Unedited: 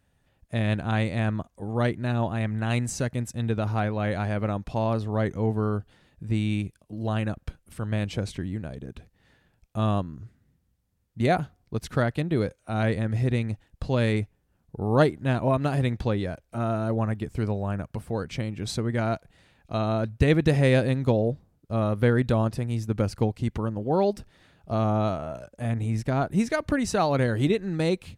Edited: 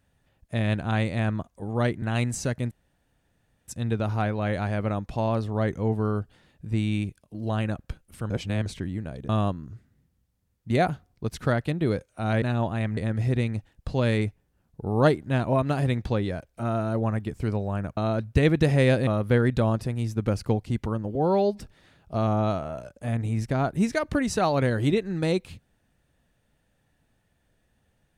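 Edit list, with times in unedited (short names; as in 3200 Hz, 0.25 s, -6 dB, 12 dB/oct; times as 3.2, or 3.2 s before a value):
2.02–2.57 move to 12.92
3.26 insert room tone 0.97 s
7.88–8.24 reverse
8.87–9.79 cut
17.92–19.82 cut
20.92–21.79 cut
23.87–24.17 stretch 1.5×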